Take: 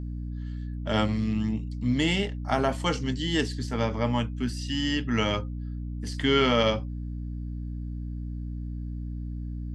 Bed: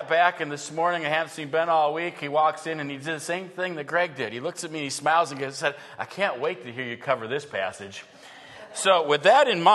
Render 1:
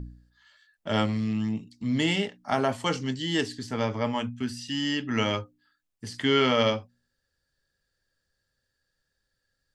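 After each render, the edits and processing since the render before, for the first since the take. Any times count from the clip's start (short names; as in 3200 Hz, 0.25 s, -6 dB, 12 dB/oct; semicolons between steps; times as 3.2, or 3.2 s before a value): de-hum 60 Hz, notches 5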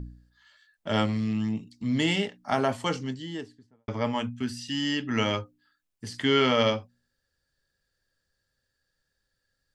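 2.68–3.88 studio fade out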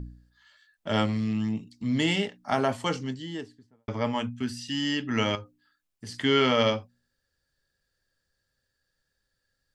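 5.35–6.09 compressor 2:1, threshold -38 dBFS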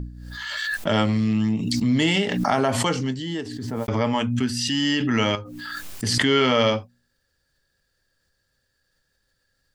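in parallel at 0 dB: limiter -19.5 dBFS, peak gain reduction 9 dB; on the sum: backwards sustainer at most 26 dB/s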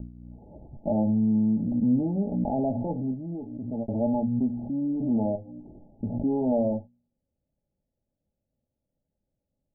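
minimum comb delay 0.33 ms; rippled Chebyshev low-pass 870 Hz, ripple 9 dB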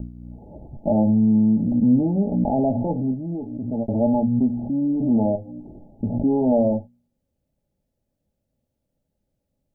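gain +6 dB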